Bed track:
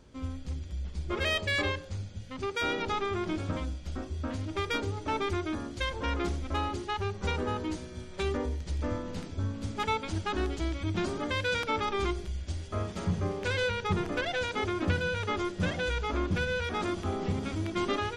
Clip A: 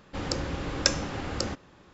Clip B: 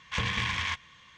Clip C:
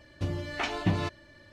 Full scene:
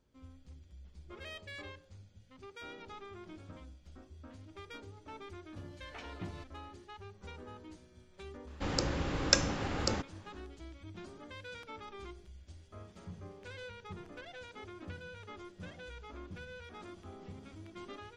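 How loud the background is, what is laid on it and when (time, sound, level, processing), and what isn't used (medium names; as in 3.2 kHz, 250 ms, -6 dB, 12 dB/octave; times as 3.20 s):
bed track -17.5 dB
5.35 s: add C -17.5 dB
8.47 s: add A -2 dB
not used: B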